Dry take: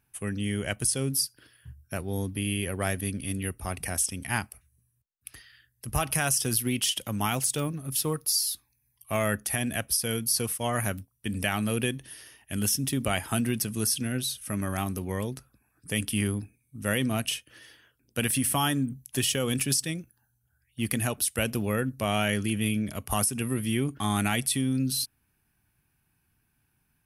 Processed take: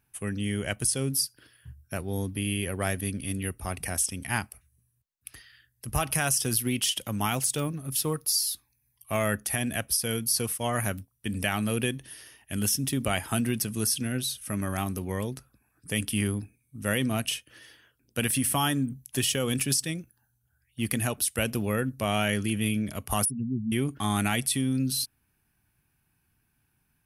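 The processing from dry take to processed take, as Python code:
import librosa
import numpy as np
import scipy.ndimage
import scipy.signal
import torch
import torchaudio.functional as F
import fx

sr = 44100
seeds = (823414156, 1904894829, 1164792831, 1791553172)

y = fx.spec_expand(x, sr, power=3.7, at=(23.25, 23.72))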